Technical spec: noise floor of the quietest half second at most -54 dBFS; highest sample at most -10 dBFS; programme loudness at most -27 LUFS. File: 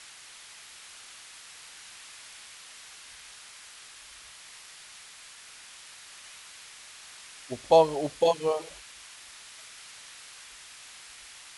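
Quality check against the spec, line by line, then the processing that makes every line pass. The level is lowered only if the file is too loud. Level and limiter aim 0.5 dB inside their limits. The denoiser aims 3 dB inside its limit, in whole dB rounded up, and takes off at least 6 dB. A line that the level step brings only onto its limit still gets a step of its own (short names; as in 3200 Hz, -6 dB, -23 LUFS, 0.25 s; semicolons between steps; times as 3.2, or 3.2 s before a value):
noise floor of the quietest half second -49 dBFS: fail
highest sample -8.0 dBFS: fail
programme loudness -25.5 LUFS: fail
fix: denoiser 6 dB, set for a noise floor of -49 dBFS; gain -2 dB; limiter -10.5 dBFS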